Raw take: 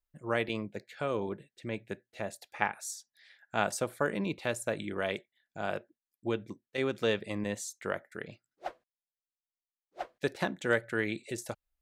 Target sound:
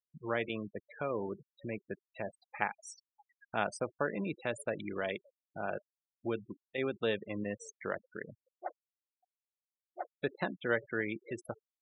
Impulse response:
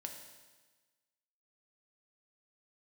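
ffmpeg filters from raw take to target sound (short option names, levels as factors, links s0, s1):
-filter_complex "[0:a]highpass=f=98:p=1,equalizer=f=7100:w=2.3:g=-6.5,asplit=2[s0][s1];[s1]acompressor=threshold=0.00631:ratio=12,volume=1[s2];[s0][s2]amix=inputs=2:normalize=0,asplit=2[s3][s4];[s4]adelay=571,lowpass=f=1300:p=1,volume=0.0708,asplit=2[s5][s6];[s6]adelay=571,lowpass=f=1300:p=1,volume=0.26[s7];[s3][s5][s7]amix=inputs=3:normalize=0,afftfilt=real='re*gte(hypot(re,im),0.02)':imag='im*gte(hypot(re,im),0.02)':win_size=1024:overlap=0.75,volume=0.631"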